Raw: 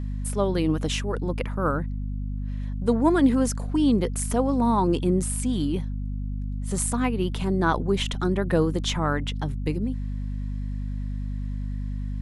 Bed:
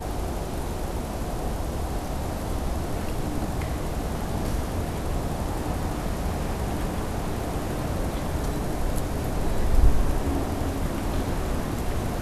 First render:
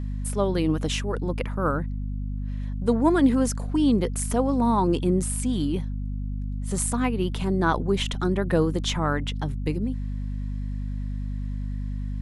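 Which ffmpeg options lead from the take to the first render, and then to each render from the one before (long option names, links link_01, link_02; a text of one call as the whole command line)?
ffmpeg -i in.wav -af anull out.wav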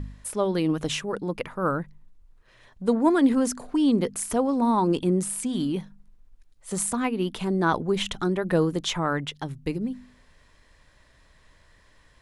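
ffmpeg -i in.wav -af "bandreject=frequency=50:width_type=h:width=4,bandreject=frequency=100:width_type=h:width=4,bandreject=frequency=150:width_type=h:width=4,bandreject=frequency=200:width_type=h:width=4,bandreject=frequency=250:width_type=h:width=4" out.wav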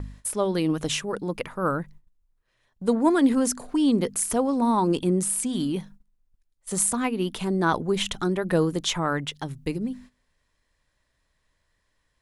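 ffmpeg -i in.wav -af "agate=range=-15dB:threshold=-45dB:ratio=16:detection=peak,highshelf=frequency=5800:gain=6.5" out.wav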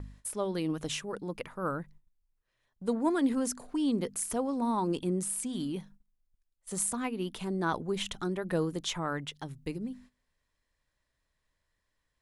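ffmpeg -i in.wav -af "volume=-8dB" out.wav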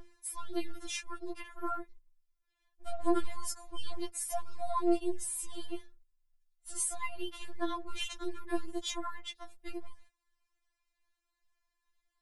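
ffmpeg -i in.wav -filter_complex "[0:a]acrossover=split=160|660|5000[link_01][link_02][link_03][link_04];[link_02]aeval=exprs='max(val(0),0)':channel_layout=same[link_05];[link_01][link_05][link_03][link_04]amix=inputs=4:normalize=0,afftfilt=real='re*4*eq(mod(b,16),0)':imag='im*4*eq(mod(b,16),0)':win_size=2048:overlap=0.75" out.wav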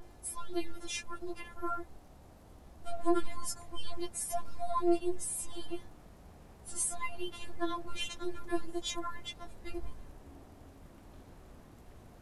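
ffmpeg -i in.wav -i bed.wav -filter_complex "[1:a]volume=-27dB[link_01];[0:a][link_01]amix=inputs=2:normalize=0" out.wav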